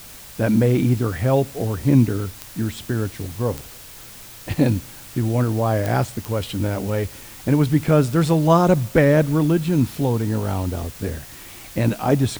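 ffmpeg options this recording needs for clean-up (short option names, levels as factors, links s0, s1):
-af "adeclick=t=4,afwtdn=0.0089"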